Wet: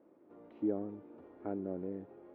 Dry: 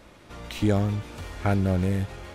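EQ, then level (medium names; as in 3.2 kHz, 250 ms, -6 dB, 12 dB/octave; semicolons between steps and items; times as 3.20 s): ladder band-pass 380 Hz, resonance 45%; distance through air 76 m; 0.0 dB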